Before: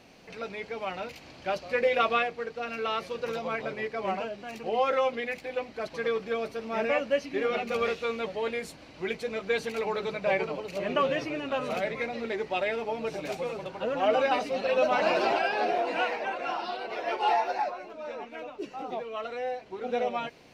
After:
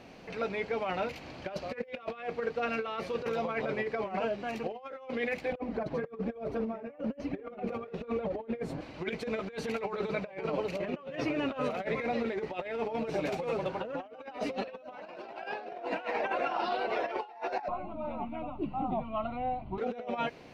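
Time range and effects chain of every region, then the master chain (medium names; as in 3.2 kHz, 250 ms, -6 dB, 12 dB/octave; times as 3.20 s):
5.52–8.81 s: tilt shelf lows +8.5 dB, about 1.4 kHz + upward compressor, threshold -31 dBFS + flange 1.1 Hz, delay 1.2 ms, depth 6.8 ms, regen -6%
17.68–19.78 s: tilt EQ -4.5 dB/octave + static phaser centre 1.7 kHz, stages 6
whole clip: treble shelf 3.5 kHz -10 dB; compressor with a negative ratio -34 dBFS, ratio -0.5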